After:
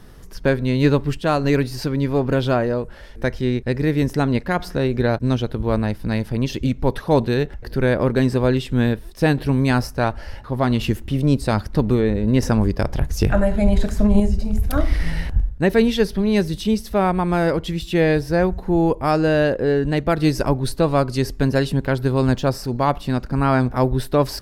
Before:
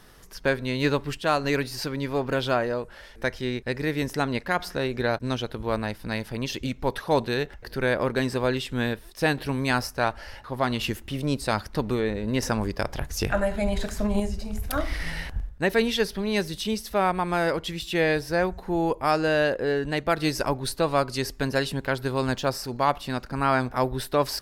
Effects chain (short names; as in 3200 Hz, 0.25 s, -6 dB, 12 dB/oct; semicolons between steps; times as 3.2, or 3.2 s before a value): low shelf 460 Hz +12 dB